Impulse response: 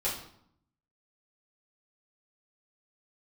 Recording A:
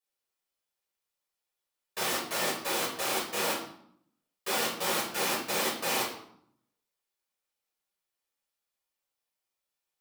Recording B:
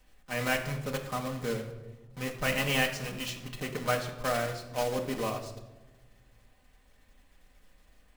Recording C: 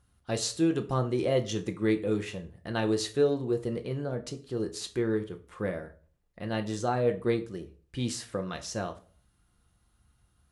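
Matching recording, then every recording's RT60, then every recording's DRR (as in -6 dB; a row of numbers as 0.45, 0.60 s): A; 0.70, 1.2, 0.40 s; -8.0, 1.5, 6.0 dB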